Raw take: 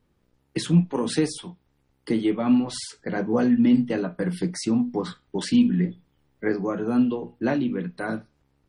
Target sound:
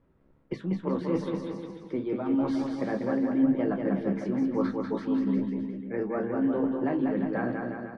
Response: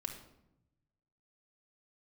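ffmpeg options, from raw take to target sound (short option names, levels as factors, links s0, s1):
-filter_complex "[0:a]lowpass=1500,bandreject=f=49.01:t=h:w=4,bandreject=f=98.02:t=h:w=4,bandreject=f=147.03:t=h:w=4,bandreject=f=196.04:t=h:w=4,areverse,acompressor=threshold=0.0355:ratio=6,areverse,asplit=2[s0][s1];[s1]adelay=20,volume=0.282[s2];[s0][s2]amix=inputs=2:normalize=0,asplit=2[s3][s4];[s4]aecho=0:1:210|388.5|540.2|669.2|778.8:0.631|0.398|0.251|0.158|0.1[s5];[s3][s5]amix=inputs=2:normalize=0,asetrate=48000,aresample=44100,volume=1.33"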